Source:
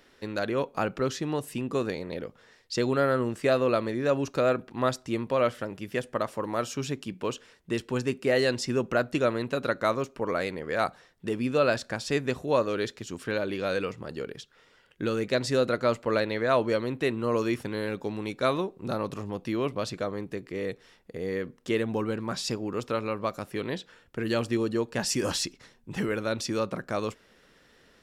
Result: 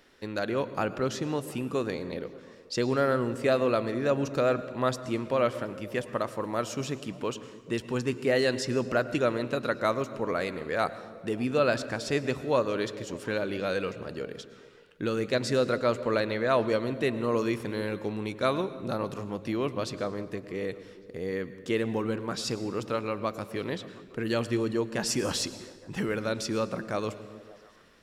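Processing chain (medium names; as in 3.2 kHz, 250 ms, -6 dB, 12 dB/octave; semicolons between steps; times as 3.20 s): repeats whose band climbs or falls 144 ms, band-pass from 150 Hz, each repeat 0.7 oct, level -11.5 dB; on a send at -14.5 dB: reverberation RT60 1.3 s, pre-delay 96 ms; on the sum: trim -1 dB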